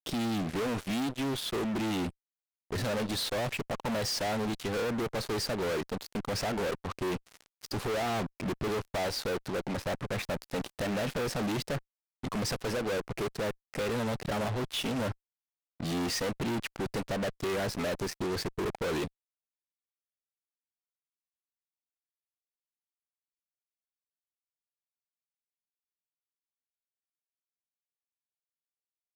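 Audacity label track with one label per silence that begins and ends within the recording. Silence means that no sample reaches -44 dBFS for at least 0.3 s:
2.100000	2.710000	silence
11.790000	12.230000	silence
15.120000	15.800000	silence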